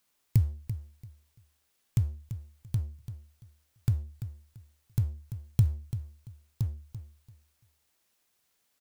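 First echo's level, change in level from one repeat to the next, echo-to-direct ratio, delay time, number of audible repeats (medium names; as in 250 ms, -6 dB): -11.5 dB, -13.0 dB, -11.5 dB, 339 ms, 2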